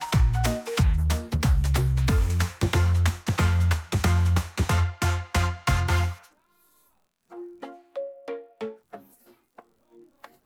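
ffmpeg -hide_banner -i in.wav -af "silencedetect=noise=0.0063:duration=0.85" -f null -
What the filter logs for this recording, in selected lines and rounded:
silence_start: 6.27
silence_end: 7.32 | silence_duration: 1.05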